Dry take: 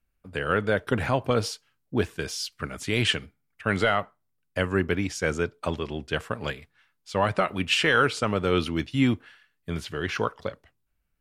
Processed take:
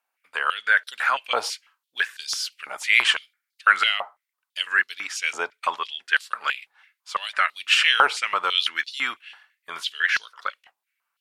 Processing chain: step-sequenced high-pass 6 Hz 830–4200 Hz; trim +3 dB

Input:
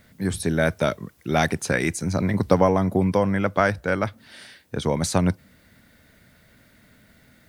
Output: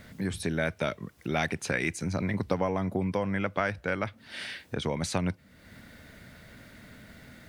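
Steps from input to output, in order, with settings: treble shelf 9.3 kHz -8 dB; compression 2:1, threshold -44 dBFS, peak gain reduction 17 dB; dynamic bell 2.5 kHz, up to +7 dB, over -57 dBFS, Q 1.4; trim +5.5 dB

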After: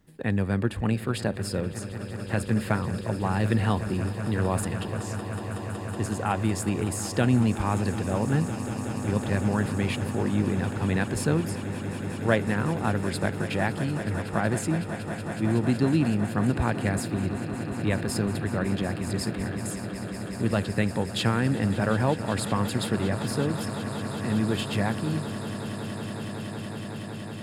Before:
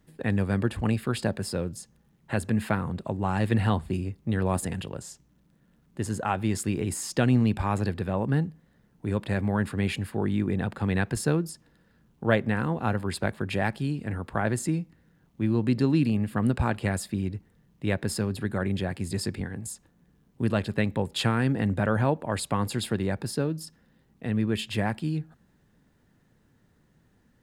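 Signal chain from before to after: echo with a slow build-up 186 ms, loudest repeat 8, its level -16 dB

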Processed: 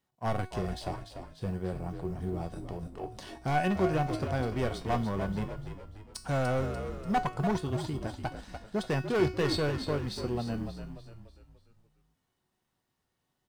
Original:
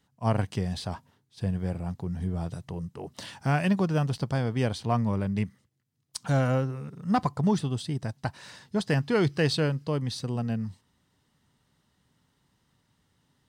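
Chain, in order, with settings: companding laws mixed up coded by A; peaking EQ 630 Hz +6 dB 2.2 oct; hard clipper -19.5 dBFS, distortion -12 dB; feedback comb 370 Hz, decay 0.37 s, harmonics all, mix 80%; on a send: frequency-shifting echo 293 ms, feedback 45%, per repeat -54 Hz, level -8 dB; on the sum: trim +7.5 dB

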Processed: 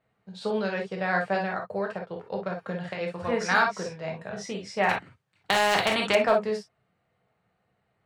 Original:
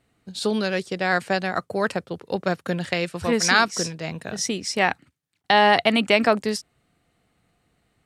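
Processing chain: peaking EQ 280 Hz -14 dB 1.2 oct; 1.55–3.01 s: compression, threshold -27 dBFS, peak gain reduction 7.5 dB; band-pass filter 420 Hz, Q 0.51; hard clipper -12.5 dBFS, distortion -30 dB; gated-style reverb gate 80 ms flat, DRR 0.5 dB; 4.89–6.15 s: spectrum-flattening compressor 2:1

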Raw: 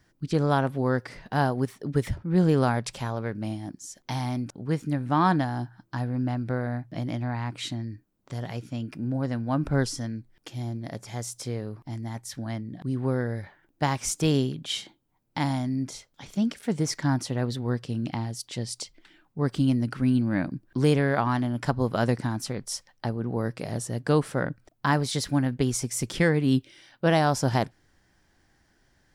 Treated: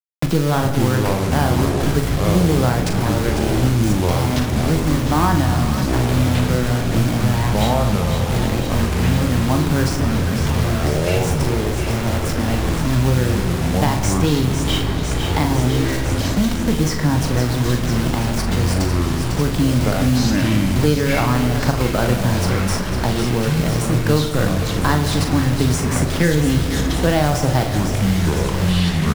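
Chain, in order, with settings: block-companded coder 5-bit; in parallel at -4 dB: Schmitt trigger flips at -30.5 dBFS; on the sum: bit crusher 6-bit; doubling 40 ms -7 dB; feedback echo behind a high-pass 500 ms, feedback 75%, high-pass 1.6 kHz, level -10.5 dB; reverberation RT60 2.7 s, pre-delay 6 ms, DRR 7 dB; ever faster or slower copies 309 ms, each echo -6 st, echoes 3; three bands compressed up and down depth 70%; trim +2.5 dB

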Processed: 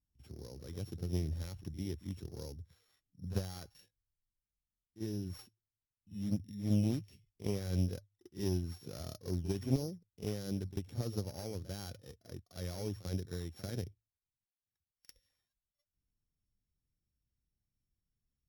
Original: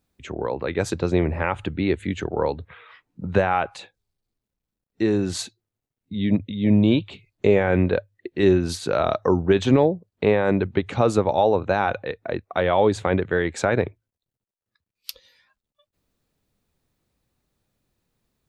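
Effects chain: sorted samples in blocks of 8 samples; amplifier tone stack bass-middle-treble 10-0-1; in parallel at -8.5 dB: decimation with a swept rate 9×, swing 160% 1.5 Hz; on the sum: Chebyshev shaper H 3 -16 dB, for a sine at -19 dBFS; reverse echo 45 ms -13.5 dB; trim +2 dB

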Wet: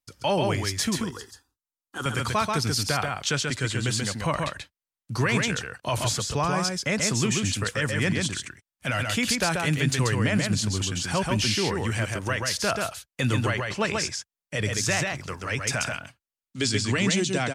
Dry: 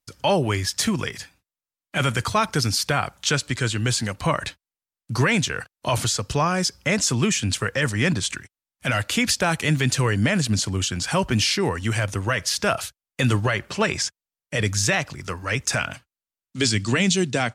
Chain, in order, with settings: 0.97–2.06 s: static phaser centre 610 Hz, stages 6; on a send: delay 135 ms -3.5 dB; on the sum: trim -4.5 dB

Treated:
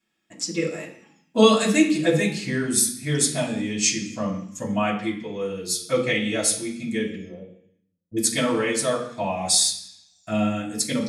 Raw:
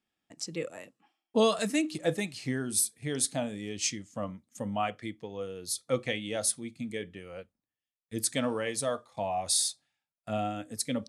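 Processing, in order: 7.15–8.17 s: Gaussian low-pass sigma 13 samples; reverberation RT60 0.65 s, pre-delay 3 ms, DRR -7 dB; trim +1.5 dB

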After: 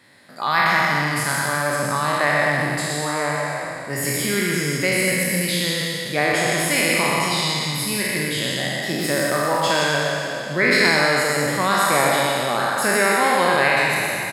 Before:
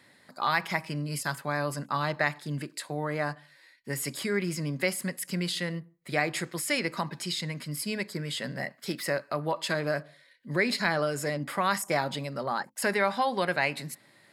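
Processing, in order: spectral sustain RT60 2.90 s; loudspeakers at several distances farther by 42 m -5 dB, 55 m -9 dB; trim +3 dB

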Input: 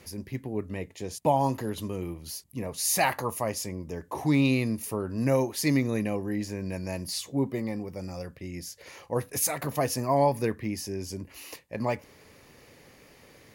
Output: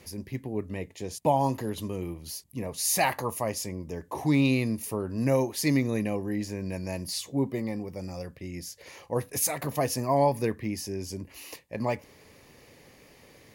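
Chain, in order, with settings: peaking EQ 1.4 kHz -4.5 dB 0.35 oct

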